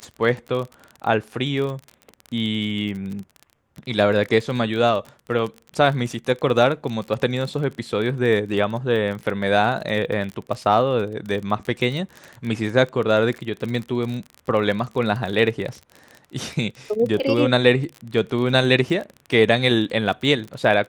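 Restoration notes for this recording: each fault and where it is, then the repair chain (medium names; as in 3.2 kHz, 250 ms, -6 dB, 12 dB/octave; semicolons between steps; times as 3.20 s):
crackle 31 per s -28 dBFS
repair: de-click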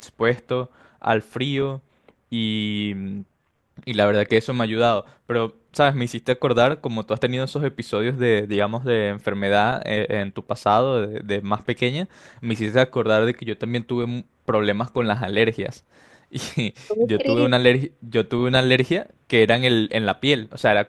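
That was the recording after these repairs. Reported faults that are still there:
nothing left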